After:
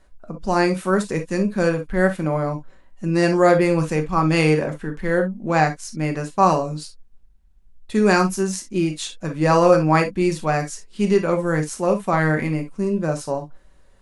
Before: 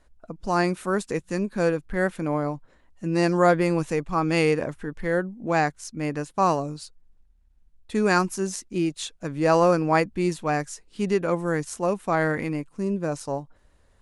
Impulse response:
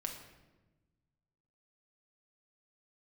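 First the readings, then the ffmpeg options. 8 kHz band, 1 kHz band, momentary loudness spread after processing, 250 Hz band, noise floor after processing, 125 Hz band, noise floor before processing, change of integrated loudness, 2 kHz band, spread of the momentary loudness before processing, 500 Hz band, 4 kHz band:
+4.0 dB, +4.0 dB, 12 LU, +5.0 dB, -51 dBFS, +6.5 dB, -60 dBFS, +4.5 dB, +4.0 dB, 12 LU, +4.5 dB, +4.5 dB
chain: -filter_complex "[1:a]atrim=start_sample=2205,atrim=end_sample=3087[a];[0:a][a]afir=irnorm=-1:irlink=0,volume=5.5dB"

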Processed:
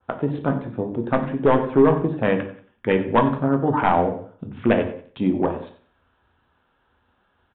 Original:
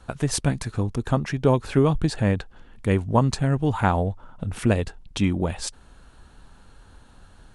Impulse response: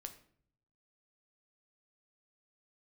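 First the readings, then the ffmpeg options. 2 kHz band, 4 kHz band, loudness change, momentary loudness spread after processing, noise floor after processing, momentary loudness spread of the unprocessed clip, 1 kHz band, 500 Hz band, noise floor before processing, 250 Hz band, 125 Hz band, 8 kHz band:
+3.0 dB, -6.0 dB, +2.5 dB, 11 LU, -67 dBFS, 9 LU, +5.5 dB, +5.5 dB, -51 dBFS, +3.0 dB, -5.0 dB, under -40 dB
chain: -filter_complex "[0:a]afwtdn=0.0282,bandreject=f=50:t=h:w=6,bandreject=f=100:t=h:w=6,bandreject=f=150:t=h:w=6,bandreject=f=200:t=h:w=6,bandreject=f=250:t=h:w=6,bandreject=f=300:t=h:w=6,acrossover=split=910[a][b];[b]acontrast=87[c];[a][c]amix=inputs=2:normalize=0,highpass=230,tiltshelf=f=1.2k:g=4,volume=12dB,asoftclip=hard,volume=-12dB,aecho=1:1:92|184|276:0.158|0.0523|0.0173[d];[1:a]atrim=start_sample=2205,afade=t=out:st=0.22:d=0.01,atrim=end_sample=10143,asetrate=38367,aresample=44100[e];[d][e]afir=irnorm=-1:irlink=0,aresample=8000,aresample=44100,adynamicequalizer=threshold=0.01:dfrequency=1600:dqfactor=0.7:tfrequency=1600:tqfactor=0.7:attack=5:release=100:ratio=0.375:range=3:mode=cutabove:tftype=highshelf,volume=6.5dB"

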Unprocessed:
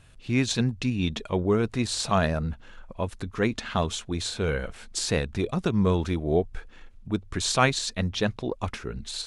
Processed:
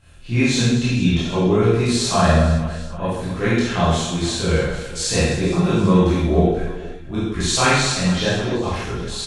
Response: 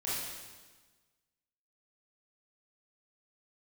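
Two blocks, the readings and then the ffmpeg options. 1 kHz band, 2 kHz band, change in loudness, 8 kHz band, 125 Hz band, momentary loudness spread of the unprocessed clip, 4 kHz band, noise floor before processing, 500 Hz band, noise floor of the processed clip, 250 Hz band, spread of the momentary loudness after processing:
+7.5 dB, +8.0 dB, +8.0 dB, +8.0 dB, +9.5 dB, 10 LU, +7.5 dB, -50 dBFS, +7.5 dB, -33 dBFS, +9.0 dB, 10 LU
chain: -filter_complex "[0:a]aecho=1:1:50|130|258|462.8|790.5:0.631|0.398|0.251|0.158|0.1[a];[1:a]atrim=start_sample=2205,afade=t=out:st=0.24:d=0.01,atrim=end_sample=11025,asetrate=61740,aresample=44100[b];[a][b]afir=irnorm=-1:irlink=0,volume=4.5dB"

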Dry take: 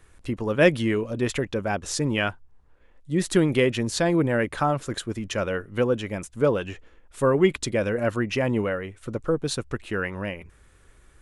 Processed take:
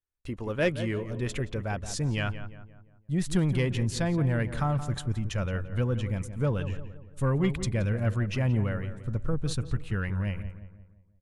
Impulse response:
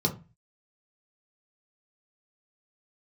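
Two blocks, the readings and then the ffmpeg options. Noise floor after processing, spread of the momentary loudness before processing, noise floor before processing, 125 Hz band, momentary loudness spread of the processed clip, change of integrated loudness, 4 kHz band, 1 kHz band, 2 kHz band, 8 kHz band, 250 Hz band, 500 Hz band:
-59 dBFS, 11 LU, -56 dBFS, +3.0 dB, 8 LU, -4.5 dB, -7.0 dB, -8.0 dB, -7.5 dB, -6.5 dB, -5.0 dB, -10.0 dB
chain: -filter_complex "[0:a]agate=range=-34dB:threshold=-44dB:ratio=16:detection=peak,asubboost=boost=8:cutoff=130,asoftclip=type=tanh:threshold=-9dB,asplit=2[a][b];[b]adelay=173,lowpass=f=1.9k:p=1,volume=-11dB,asplit=2[c][d];[d]adelay=173,lowpass=f=1.9k:p=1,volume=0.47,asplit=2[e][f];[f]adelay=173,lowpass=f=1.9k:p=1,volume=0.47,asplit=2[g][h];[h]adelay=173,lowpass=f=1.9k:p=1,volume=0.47,asplit=2[i][j];[j]adelay=173,lowpass=f=1.9k:p=1,volume=0.47[k];[c][e][g][i][k]amix=inputs=5:normalize=0[l];[a][l]amix=inputs=2:normalize=0,volume=-6.5dB"

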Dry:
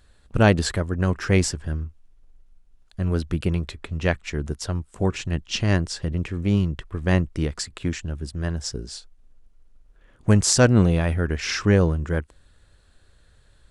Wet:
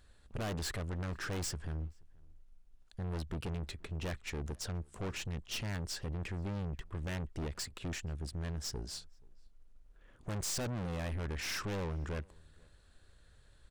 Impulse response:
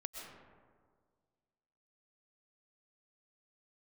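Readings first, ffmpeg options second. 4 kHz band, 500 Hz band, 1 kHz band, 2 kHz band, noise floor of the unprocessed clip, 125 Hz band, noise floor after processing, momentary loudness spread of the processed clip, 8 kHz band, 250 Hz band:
-12.0 dB, -18.5 dB, -14.5 dB, -15.0 dB, -57 dBFS, -16.5 dB, -62 dBFS, 6 LU, -14.0 dB, -19.0 dB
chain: -filter_complex "[0:a]aeval=exprs='(tanh(35.5*val(0)+0.4)-tanh(0.4))/35.5':c=same,asplit=2[a][b];[b]adelay=478.1,volume=-27dB,highshelf=f=4k:g=-10.8[c];[a][c]amix=inputs=2:normalize=0,volume=-4.5dB"

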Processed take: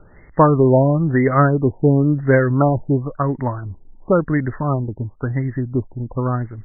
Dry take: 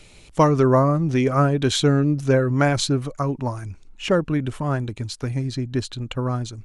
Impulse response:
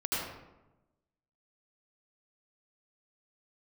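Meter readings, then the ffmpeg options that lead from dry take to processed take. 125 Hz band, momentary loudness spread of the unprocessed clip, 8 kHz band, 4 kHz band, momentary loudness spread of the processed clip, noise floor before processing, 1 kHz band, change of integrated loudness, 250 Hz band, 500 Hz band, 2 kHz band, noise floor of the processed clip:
+3.5 dB, 12 LU, under -40 dB, under -40 dB, 12 LU, -48 dBFS, +3.5 dB, +3.5 dB, +3.5 dB, +3.5 dB, +3.0 dB, -46 dBFS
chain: -af "equalizer=f=1.9k:t=o:w=0.6:g=9.5,afftfilt=real='re*lt(b*sr/1024,940*pow(2200/940,0.5+0.5*sin(2*PI*0.96*pts/sr)))':imag='im*lt(b*sr/1024,940*pow(2200/940,0.5+0.5*sin(2*PI*0.96*pts/sr)))':win_size=1024:overlap=0.75,volume=3.5dB"

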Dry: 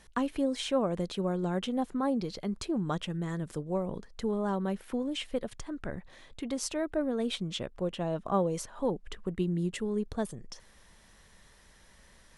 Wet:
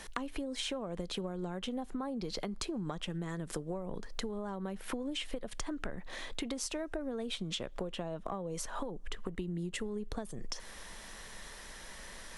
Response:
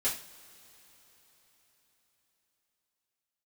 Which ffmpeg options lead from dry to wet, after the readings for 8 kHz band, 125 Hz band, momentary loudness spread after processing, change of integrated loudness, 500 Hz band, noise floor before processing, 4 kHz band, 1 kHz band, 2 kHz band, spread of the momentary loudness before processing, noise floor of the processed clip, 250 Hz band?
0.0 dB, -7.0 dB, 10 LU, -7.0 dB, -7.5 dB, -59 dBFS, -0.5 dB, -6.5 dB, -0.5 dB, 9 LU, -49 dBFS, -7.5 dB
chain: -filter_complex "[0:a]acrossover=split=130[a][b];[b]acompressor=threshold=-39dB:ratio=6[c];[a][c]amix=inputs=2:normalize=0,equalizer=f=94:t=o:w=1.9:g=-11,asplit=2[d][e];[1:a]atrim=start_sample=2205,asetrate=52920,aresample=44100[f];[e][f]afir=irnorm=-1:irlink=0,volume=-28.5dB[g];[d][g]amix=inputs=2:normalize=0,acompressor=threshold=-46dB:ratio=6,volume=11.5dB"

